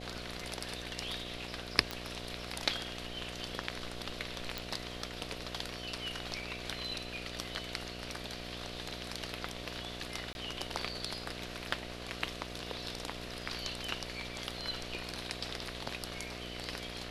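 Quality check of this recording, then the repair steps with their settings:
mains buzz 60 Hz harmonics 12 −46 dBFS
0:01.91: click −20 dBFS
0:04.58: click
0:10.33–0:10.35: drop-out 21 ms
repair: click removal
hum removal 60 Hz, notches 12
repair the gap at 0:10.33, 21 ms

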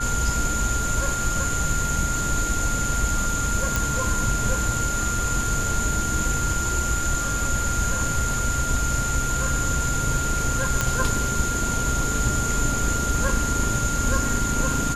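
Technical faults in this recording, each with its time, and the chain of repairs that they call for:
whistle 1,400 Hz −27 dBFS
0:03.76: click
0:10.81: click −6 dBFS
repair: click removal
notch filter 1,400 Hz, Q 30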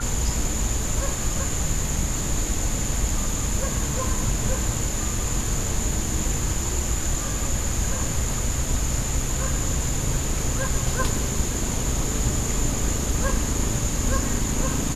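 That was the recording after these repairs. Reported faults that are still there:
none of them is left

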